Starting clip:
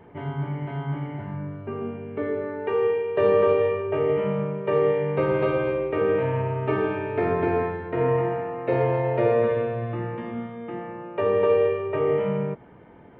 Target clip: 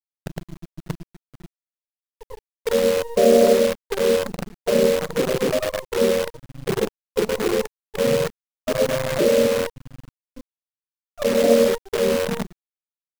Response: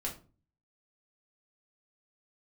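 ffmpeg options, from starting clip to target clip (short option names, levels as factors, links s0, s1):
-filter_complex "[0:a]asplit=3[s0][s1][s2];[s1]asetrate=22050,aresample=44100,atempo=2,volume=0.631[s3];[s2]asetrate=52444,aresample=44100,atempo=0.840896,volume=0.891[s4];[s0][s3][s4]amix=inputs=3:normalize=0,acrossover=split=140|330|1600[s5][s6][s7][s8];[s5]aeval=exprs='(mod(15.8*val(0)+1,2)-1)/15.8':c=same[s9];[s9][s6][s7][s8]amix=inputs=4:normalize=0,afftfilt=real='re*gte(hypot(re,im),0.562)':imag='im*gte(hypot(re,im),0.562)':win_size=1024:overlap=0.75,acrusher=bits=5:dc=4:mix=0:aa=0.000001,volume=1.26"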